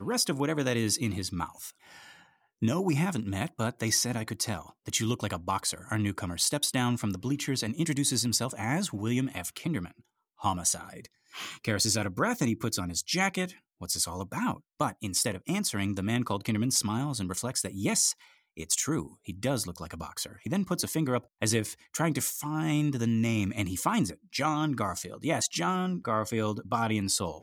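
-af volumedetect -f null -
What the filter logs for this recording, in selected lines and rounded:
mean_volume: -30.6 dB
max_volume: -12.0 dB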